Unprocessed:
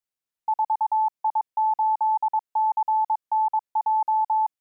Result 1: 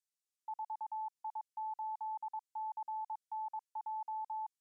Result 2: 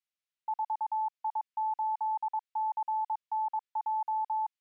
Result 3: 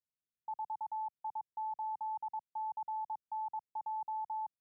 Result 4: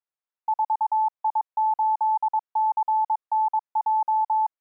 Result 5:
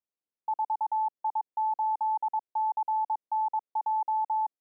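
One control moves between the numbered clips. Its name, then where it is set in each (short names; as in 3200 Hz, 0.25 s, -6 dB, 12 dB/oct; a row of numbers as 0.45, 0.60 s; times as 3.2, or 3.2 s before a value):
band-pass, frequency: 7200, 2800, 120, 1000, 380 Hz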